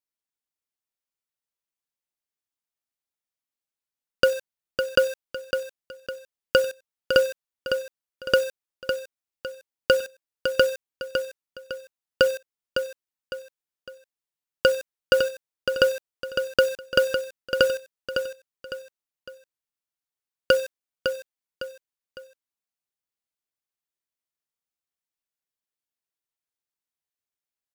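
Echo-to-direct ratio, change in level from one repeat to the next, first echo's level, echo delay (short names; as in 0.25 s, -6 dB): -6.5 dB, -8.5 dB, -7.0 dB, 0.556 s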